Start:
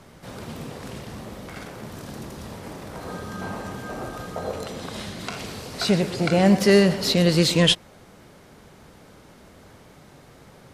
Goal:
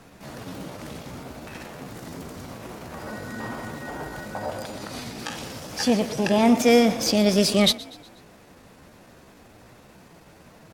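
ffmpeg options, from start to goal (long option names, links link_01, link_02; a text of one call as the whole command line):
ffmpeg -i in.wav -filter_complex "[0:a]asetrate=52444,aresample=44100,atempo=0.840896,asplit=5[link_01][link_02][link_03][link_04][link_05];[link_02]adelay=122,afreqshift=32,volume=-20.5dB[link_06];[link_03]adelay=244,afreqshift=64,volume=-26.3dB[link_07];[link_04]adelay=366,afreqshift=96,volume=-32.2dB[link_08];[link_05]adelay=488,afreqshift=128,volume=-38dB[link_09];[link_01][link_06][link_07][link_08][link_09]amix=inputs=5:normalize=0,volume=-1dB" out.wav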